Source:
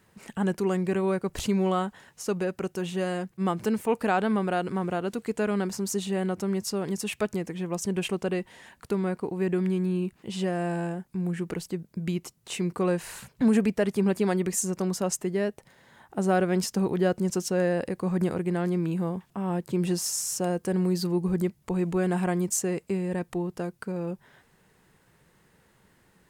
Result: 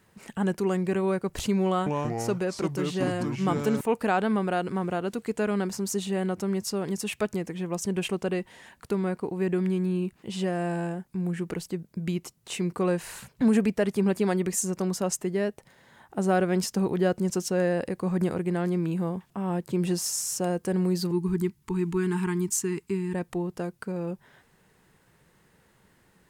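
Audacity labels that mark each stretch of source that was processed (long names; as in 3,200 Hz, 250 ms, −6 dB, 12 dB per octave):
1.680000	3.810000	delay with pitch and tempo change per echo 182 ms, each echo −4 semitones, echoes 2
21.110000	23.140000	Chebyshev band-stop filter 410–880 Hz, order 3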